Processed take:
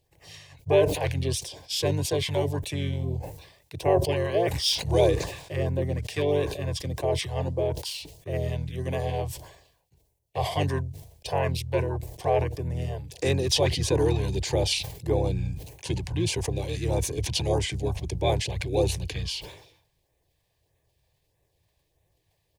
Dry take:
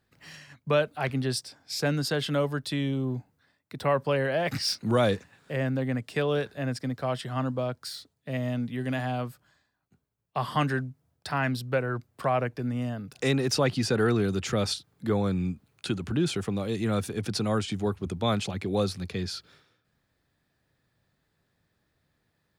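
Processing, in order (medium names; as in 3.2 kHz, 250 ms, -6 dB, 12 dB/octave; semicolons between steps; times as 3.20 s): LFO notch sine 1.6 Hz 340–5200 Hz; harmony voices -7 st -1 dB; static phaser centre 550 Hz, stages 4; decay stretcher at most 75 dB/s; trim +3 dB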